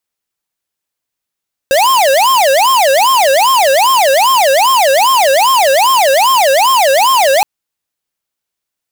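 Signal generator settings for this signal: siren wail 532–1070 Hz 2.5 per s square -9 dBFS 5.72 s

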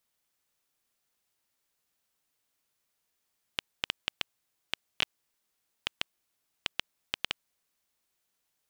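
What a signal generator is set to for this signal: random clicks 4 per s -9 dBFS 4.09 s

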